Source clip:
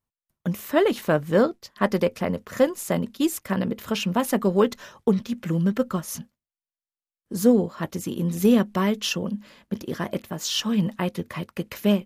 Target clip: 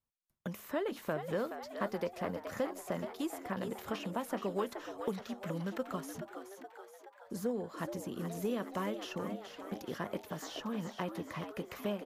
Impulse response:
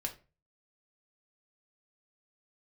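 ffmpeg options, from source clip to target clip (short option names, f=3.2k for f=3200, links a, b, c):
-filter_complex "[0:a]acrossover=split=460|1700[a][b][c];[a]acompressor=threshold=-34dB:ratio=4[d];[b]acompressor=threshold=-30dB:ratio=4[e];[c]acompressor=threshold=-45dB:ratio=4[f];[d][e][f]amix=inputs=3:normalize=0,asplit=8[g][h][i][j][k][l][m][n];[h]adelay=424,afreqshift=100,volume=-9dB[o];[i]adelay=848,afreqshift=200,volume=-14dB[p];[j]adelay=1272,afreqshift=300,volume=-19.1dB[q];[k]adelay=1696,afreqshift=400,volume=-24.1dB[r];[l]adelay=2120,afreqshift=500,volume=-29.1dB[s];[m]adelay=2544,afreqshift=600,volume=-34.2dB[t];[n]adelay=2968,afreqshift=700,volume=-39.2dB[u];[g][o][p][q][r][s][t][u]amix=inputs=8:normalize=0,volume=-6.5dB"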